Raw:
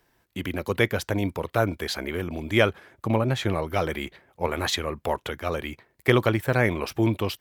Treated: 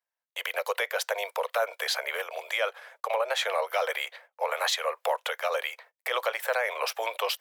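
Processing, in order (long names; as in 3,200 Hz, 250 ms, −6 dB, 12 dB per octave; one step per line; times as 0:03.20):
noise gate −53 dBFS, range −30 dB
Butterworth high-pass 490 Hz 72 dB per octave
downward compressor 1.5 to 1, threshold −31 dBFS, peak gain reduction 5.5 dB
brickwall limiter −21.5 dBFS, peak gain reduction 10.5 dB
level +5 dB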